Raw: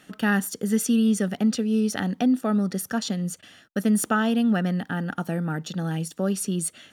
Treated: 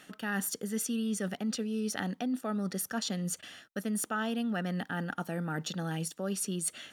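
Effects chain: bass shelf 320 Hz -7 dB; reverse; compression 4:1, threshold -33 dBFS, peak gain reduction 12 dB; reverse; trim +1.5 dB

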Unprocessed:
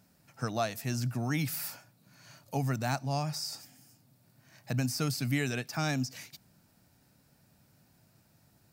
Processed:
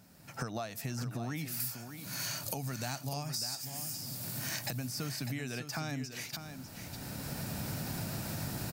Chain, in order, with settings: recorder AGC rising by 18 dB/s; 1.60–4.76 s: treble shelf 3.7 kHz +10.5 dB; compression 6:1, threshold -40 dBFS, peak gain reduction 16.5 dB; delay 599 ms -9 dB; trim +4.5 dB

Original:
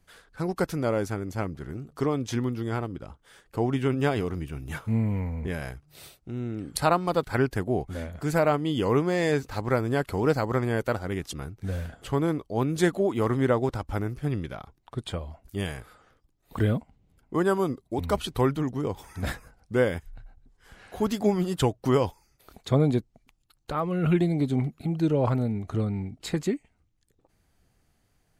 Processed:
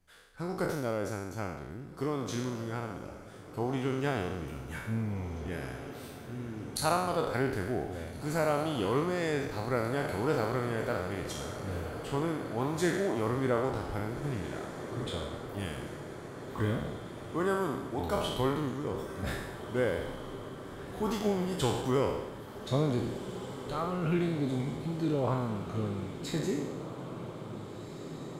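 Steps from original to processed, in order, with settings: spectral sustain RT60 0.98 s; echo that smears into a reverb 1772 ms, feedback 71%, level -11.5 dB; trim -8 dB

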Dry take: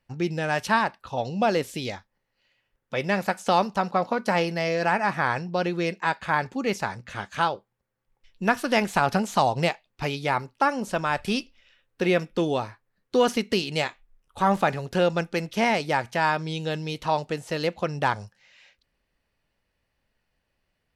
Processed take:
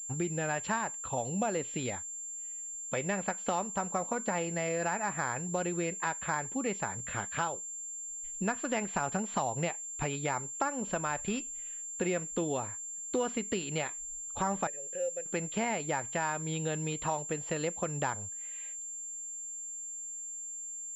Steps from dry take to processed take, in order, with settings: compression 3:1, threshold -32 dBFS, peak gain reduction 12.5 dB; 14.67–15.26 s: vowel filter e; class-D stage that switches slowly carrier 7.3 kHz

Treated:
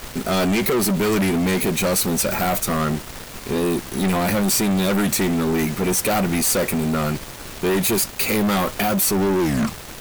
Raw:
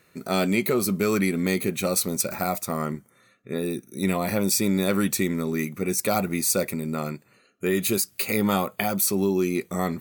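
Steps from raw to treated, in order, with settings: tape stop on the ending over 0.61 s; added noise pink -45 dBFS; waveshaping leveller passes 5; trim -6.5 dB

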